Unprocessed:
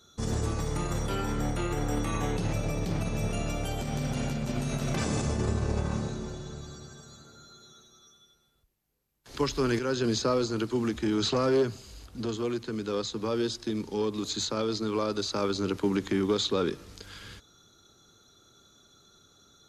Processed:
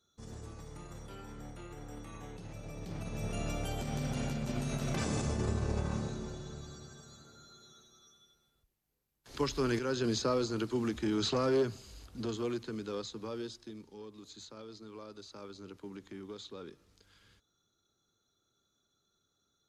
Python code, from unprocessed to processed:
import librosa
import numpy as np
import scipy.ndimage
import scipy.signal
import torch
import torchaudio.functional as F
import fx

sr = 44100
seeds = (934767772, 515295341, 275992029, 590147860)

y = fx.gain(x, sr, db=fx.line((2.49, -17.0), (3.46, -4.5), (12.53, -4.5), (13.42, -11.5), (13.98, -19.0)))